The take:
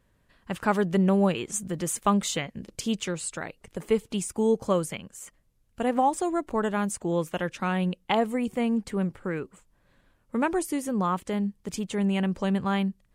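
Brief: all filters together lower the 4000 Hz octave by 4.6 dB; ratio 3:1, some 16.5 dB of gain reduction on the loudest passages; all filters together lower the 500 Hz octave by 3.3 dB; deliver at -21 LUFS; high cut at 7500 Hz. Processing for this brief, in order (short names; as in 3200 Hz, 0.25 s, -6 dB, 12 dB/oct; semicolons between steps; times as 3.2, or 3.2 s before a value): LPF 7500 Hz; bell 500 Hz -4 dB; bell 4000 Hz -6.5 dB; compressor 3:1, threshold -43 dBFS; gain +22 dB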